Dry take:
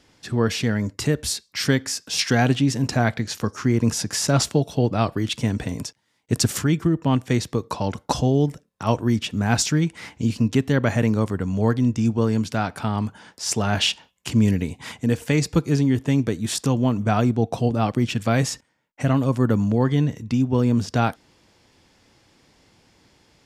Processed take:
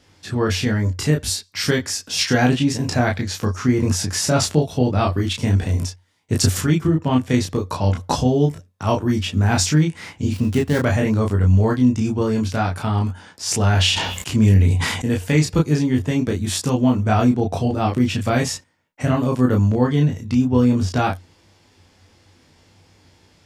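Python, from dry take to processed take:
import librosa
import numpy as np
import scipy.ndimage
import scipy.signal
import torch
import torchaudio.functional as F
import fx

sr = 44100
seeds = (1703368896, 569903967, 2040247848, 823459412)

y = fx.dead_time(x, sr, dead_ms=0.085, at=(10.33, 10.85))
y = fx.peak_eq(y, sr, hz=91.0, db=11.5, octaves=0.23)
y = fx.room_early_taps(y, sr, ms=(20, 32), db=(-5.0, -3.5))
y = fx.sustainer(y, sr, db_per_s=41.0, at=(13.45, 15.09))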